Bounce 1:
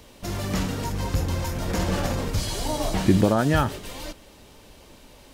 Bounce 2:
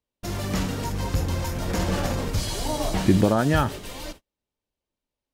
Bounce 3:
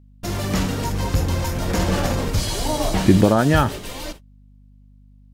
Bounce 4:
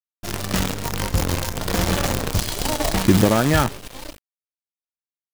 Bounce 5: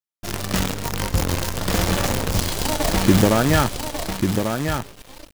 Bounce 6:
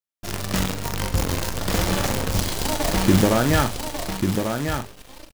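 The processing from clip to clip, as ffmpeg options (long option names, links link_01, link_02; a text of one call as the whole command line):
ffmpeg -i in.wav -af "agate=range=-39dB:threshold=-39dB:ratio=16:detection=peak" out.wav
ffmpeg -i in.wav -af "aeval=exprs='val(0)+0.00251*(sin(2*PI*50*n/s)+sin(2*PI*2*50*n/s)/2+sin(2*PI*3*50*n/s)/3+sin(2*PI*4*50*n/s)/4+sin(2*PI*5*50*n/s)/5)':channel_layout=same,volume=4.5dB" out.wav
ffmpeg -i in.wav -af "acrusher=bits=4:dc=4:mix=0:aa=0.000001,volume=-1.5dB" out.wav
ffmpeg -i in.wav -af "aecho=1:1:1143:0.501" out.wav
ffmpeg -i in.wav -filter_complex "[0:a]asplit=2[link_01][link_02];[link_02]adelay=42,volume=-10dB[link_03];[link_01][link_03]amix=inputs=2:normalize=0,volume=-2dB" out.wav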